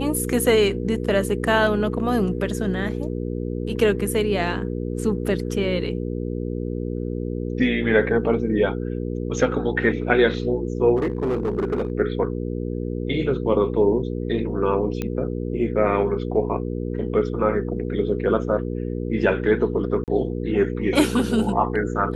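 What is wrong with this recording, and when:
hum 60 Hz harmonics 8 -27 dBFS
10.96–11.92 clipped -18.5 dBFS
15.02 pop -13 dBFS
20.04–20.08 gap 38 ms

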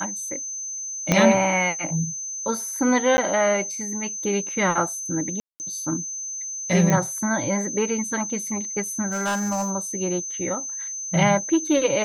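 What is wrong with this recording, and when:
tone 6200 Hz -29 dBFS
1.12 pop -4 dBFS
3.17–3.18 gap 10 ms
5.4–5.6 gap 0.199 s
6.9 pop -9 dBFS
9.07–9.72 clipped -20.5 dBFS

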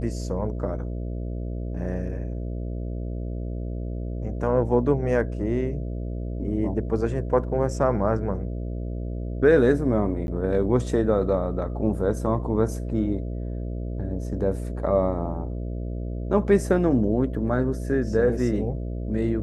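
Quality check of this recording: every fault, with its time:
buzz 60 Hz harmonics 11 -30 dBFS
10.27–10.28 gap 11 ms

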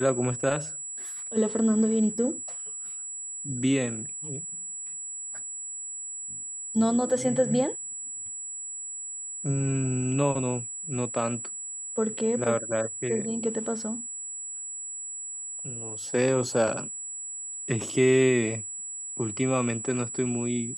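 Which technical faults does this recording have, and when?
tone 7800 Hz -34 dBFS

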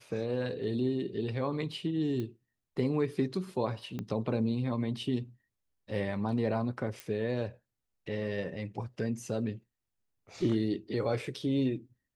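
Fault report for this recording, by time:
2.2 pop -25 dBFS
3.99 pop -24 dBFS
7 pop

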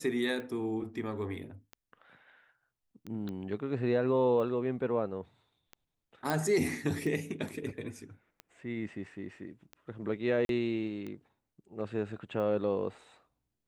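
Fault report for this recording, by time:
tick 45 rpm -29 dBFS
3.29 pop -28 dBFS
6.3 pop
10.45–10.49 gap 42 ms

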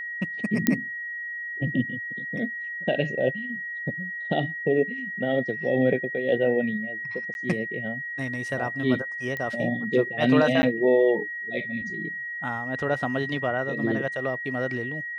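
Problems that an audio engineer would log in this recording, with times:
tone 1900 Hz -31 dBFS
0.67 pop -5 dBFS
7.34–7.35 gap 11 ms
9.37 pop -19 dBFS
10.62–10.63 gap 10 ms

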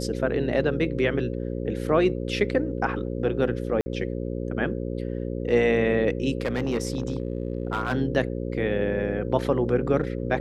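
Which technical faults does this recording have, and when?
buzz 60 Hz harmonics 9 -30 dBFS
3.81–3.86 gap 50 ms
6.38–7.93 clipped -20.5 dBFS

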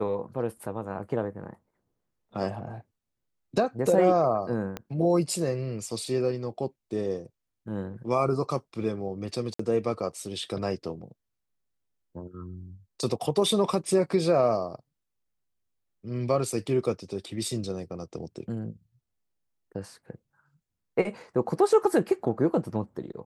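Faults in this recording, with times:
4.77 pop -19 dBFS
9.54–9.59 gap 54 ms

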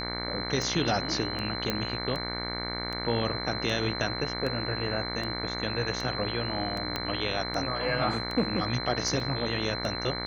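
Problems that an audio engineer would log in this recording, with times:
buzz 60 Hz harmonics 38 -36 dBFS
tick 78 rpm
tone 4100 Hz -35 dBFS
1.7 pop -13 dBFS
6.96 pop -14 dBFS
9.2 gap 2.9 ms

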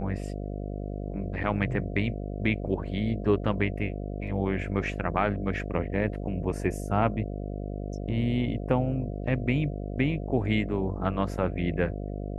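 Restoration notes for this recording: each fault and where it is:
buzz 50 Hz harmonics 14 -34 dBFS

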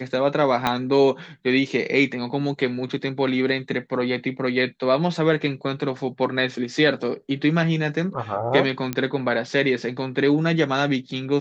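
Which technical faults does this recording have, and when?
0.67 pop -7 dBFS
8.93 pop -11 dBFS

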